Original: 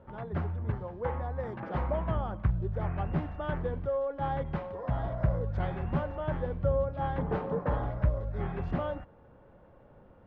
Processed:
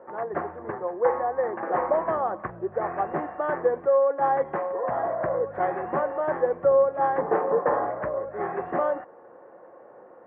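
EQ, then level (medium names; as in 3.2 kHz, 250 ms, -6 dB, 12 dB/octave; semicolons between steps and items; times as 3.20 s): cabinet simulation 330–2100 Hz, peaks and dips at 350 Hz +9 dB, 500 Hz +8 dB, 730 Hz +9 dB, 1.1 kHz +8 dB, 1.8 kHz +8 dB; +3.5 dB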